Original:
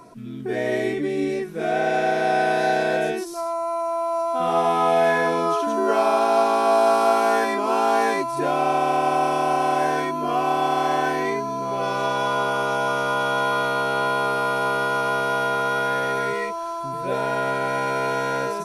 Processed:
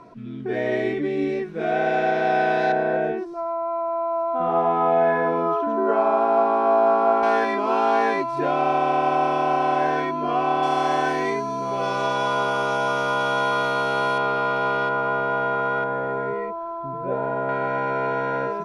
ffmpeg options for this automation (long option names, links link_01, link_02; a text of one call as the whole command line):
ffmpeg -i in.wav -af "asetnsamples=nb_out_samples=441:pad=0,asendcmd='2.72 lowpass f 1500;7.23 lowpass f 3500;10.63 lowpass f 7600;14.18 lowpass f 3400;14.89 lowpass f 1900;15.84 lowpass f 1100;17.49 lowpass f 1900',lowpass=3500" out.wav